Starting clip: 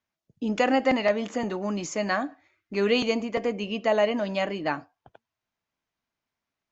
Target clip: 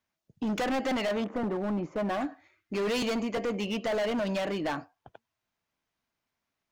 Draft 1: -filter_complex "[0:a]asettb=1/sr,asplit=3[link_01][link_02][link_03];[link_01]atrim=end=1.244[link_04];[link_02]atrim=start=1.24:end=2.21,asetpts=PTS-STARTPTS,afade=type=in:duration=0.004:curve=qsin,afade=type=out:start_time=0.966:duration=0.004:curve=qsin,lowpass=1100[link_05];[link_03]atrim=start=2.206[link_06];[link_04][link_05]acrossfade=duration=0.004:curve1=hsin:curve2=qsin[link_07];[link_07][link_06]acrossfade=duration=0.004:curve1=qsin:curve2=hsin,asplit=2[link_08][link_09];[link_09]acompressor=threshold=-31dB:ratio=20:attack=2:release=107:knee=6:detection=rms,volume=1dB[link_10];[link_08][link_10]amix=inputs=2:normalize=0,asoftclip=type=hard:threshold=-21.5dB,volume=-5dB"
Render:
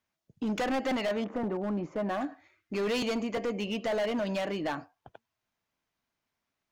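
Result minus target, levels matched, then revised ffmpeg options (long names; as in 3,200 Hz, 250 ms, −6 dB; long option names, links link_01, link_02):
downward compressor: peak gain reduction +9.5 dB
-filter_complex "[0:a]asettb=1/sr,asplit=3[link_01][link_02][link_03];[link_01]atrim=end=1.244[link_04];[link_02]atrim=start=1.24:end=2.21,asetpts=PTS-STARTPTS,afade=type=in:duration=0.004:curve=qsin,afade=type=out:start_time=0.966:duration=0.004:curve=qsin,lowpass=1100[link_05];[link_03]atrim=start=2.206[link_06];[link_04][link_05]acrossfade=duration=0.004:curve1=hsin:curve2=qsin[link_07];[link_07][link_06]acrossfade=duration=0.004:curve1=qsin:curve2=hsin,asplit=2[link_08][link_09];[link_09]acompressor=threshold=-21dB:ratio=20:attack=2:release=107:knee=6:detection=rms,volume=1dB[link_10];[link_08][link_10]amix=inputs=2:normalize=0,asoftclip=type=hard:threshold=-21.5dB,volume=-5dB"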